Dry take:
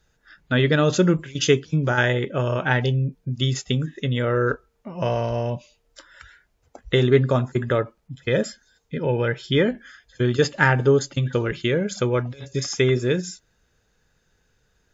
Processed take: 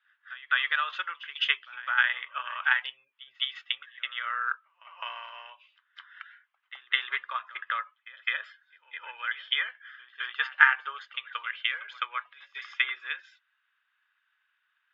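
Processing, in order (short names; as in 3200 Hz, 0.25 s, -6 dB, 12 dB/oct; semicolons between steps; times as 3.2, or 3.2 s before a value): transient shaper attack +5 dB, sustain 0 dB; elliptic band-pass 1100–3200 Hz, stop band 70 dB; reverse echo 0.209 s -19 dB; gain -1.5 dB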